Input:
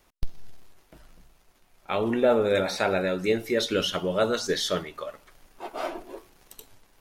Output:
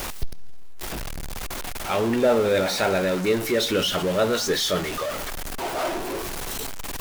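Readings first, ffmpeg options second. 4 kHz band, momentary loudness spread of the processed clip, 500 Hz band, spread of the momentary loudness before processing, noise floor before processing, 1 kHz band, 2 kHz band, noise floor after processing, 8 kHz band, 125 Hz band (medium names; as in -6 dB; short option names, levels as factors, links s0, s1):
+5.0 dB, 13 LU, +2.5 dB, 20 LU, -63 dBFS, +4.0 dB, +4.0 dB, -31 dBFS, +8.5 dB, +5.0 dB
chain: -af "aeval=exprs='val(0)+0.5*0.0562*sgn(val(0))':c=same"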